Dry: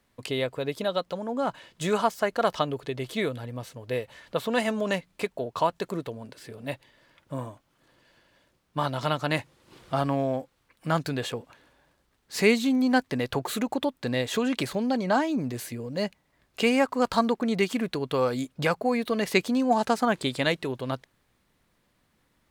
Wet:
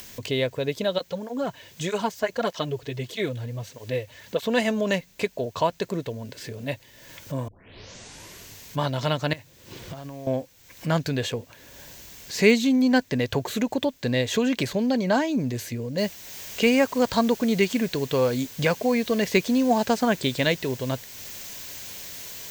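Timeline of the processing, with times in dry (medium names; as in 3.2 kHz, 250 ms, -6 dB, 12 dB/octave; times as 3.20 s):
0.98–4.43 s: cancelling through-zero flanger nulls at 1.6 Hz, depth 5.9 ms
7.48 s: tape start 1.33 s
9.33–10.27 s: compression 16:1, threshold -39 dBFS
15.98 s: noise floor step -62 dB -46 dB
whole clip: de-esser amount 60%; graphic EQ with 31 bands 100 Hz +7 dB, 315 Hz -3 dB, 800 Hz -6 dB, 1.25 kHz -10 dB, 6.3 kHz +4 dB, 10 kHz -11 dB; upward compressor, threshold -35 dBFS; trim +4 dB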